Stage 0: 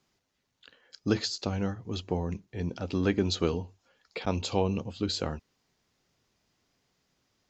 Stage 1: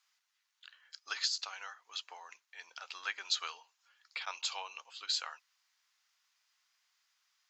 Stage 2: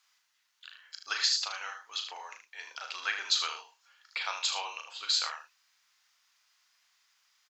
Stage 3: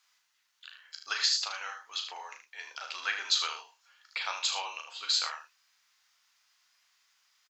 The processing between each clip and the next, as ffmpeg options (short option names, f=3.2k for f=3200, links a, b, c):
-af "highpass=f=1.1k:w=0.5412,highpass=f=1.1k:w=1.3066"
-filter_complex "[0:a]asplit=2[a][b];[b]adelay=37,volume=-6.5dB[c];[a][c]amix=inputs=2:normalize=0,asplit=2[d][e];[e]aecho=0:1:77:0.376[f];[d][f]amix=inputs=2:normalize=0,volume=5dB"
-filter_complex "[0:a]asplit=2[a][b];[b]adelay=14,volume=-11.5dB[c];[a][c]amix=inputs=2:normalize=0"